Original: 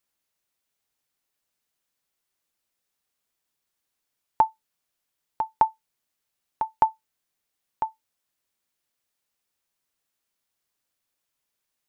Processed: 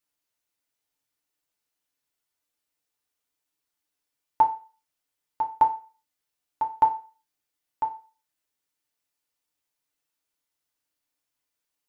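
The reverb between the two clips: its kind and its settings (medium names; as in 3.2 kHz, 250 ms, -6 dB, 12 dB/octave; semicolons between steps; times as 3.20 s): FDN reverb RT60 0.36 s, low-frequency decay 0.8×, high-frequency decay 1×, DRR 0.5 dB; trim -5.5 dB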